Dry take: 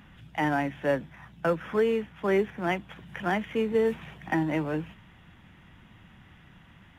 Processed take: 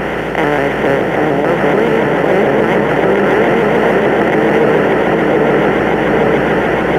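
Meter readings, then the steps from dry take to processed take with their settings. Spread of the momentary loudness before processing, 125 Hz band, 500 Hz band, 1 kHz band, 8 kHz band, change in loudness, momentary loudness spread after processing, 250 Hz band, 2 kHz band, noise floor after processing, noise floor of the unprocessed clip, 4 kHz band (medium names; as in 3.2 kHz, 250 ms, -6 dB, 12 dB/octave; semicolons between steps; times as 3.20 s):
9 LU, +17.0 dB, +18.5 dB, +19.5 dB, no reading, +16.5 dB, 2 LU, +17.0 dB, +19.5 dB, -17 dBFS, -55 dBFS, +18.0 dB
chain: spectral levelling over time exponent 0.2; delay with an opening low-pass 796 ms, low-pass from 750 Hz, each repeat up 1 oct, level 0 dB; hum 60 Hz, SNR 23 dB; loudness maximiser +7 dB; vibrato with a chosen wave saw up 6.9 Hz, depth 100 cents; trim -1 dB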